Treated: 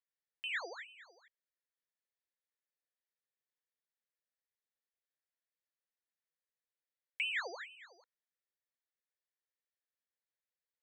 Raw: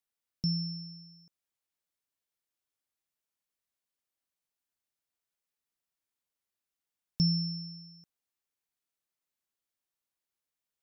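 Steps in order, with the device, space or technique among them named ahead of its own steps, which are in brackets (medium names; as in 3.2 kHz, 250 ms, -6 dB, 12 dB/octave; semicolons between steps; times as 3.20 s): voice changer toy (ring modulator with a swept carrier 1.7 kHz, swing 70%, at 2.2 Hz; cabinet simulation 460–4500 Hz, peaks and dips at 500 Hz +10 dB, 800 Hz -5 dB, 1.2 kHz -5 dB, 1.8 kHz +9 dB, 2.8 kHz -5 dB); trim -5 dB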